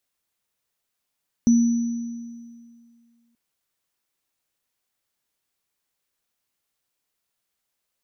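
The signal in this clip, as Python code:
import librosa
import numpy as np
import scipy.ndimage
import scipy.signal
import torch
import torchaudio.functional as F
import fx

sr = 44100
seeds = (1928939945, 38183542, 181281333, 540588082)

y = fx.additive_free(sr, length_s=1.88, hz=234.0, level_db=-11.5, upper_db=(-18.0,), decay_s=2.13, upper_decays_s=(1.79,), upper_hz=(5940.0,))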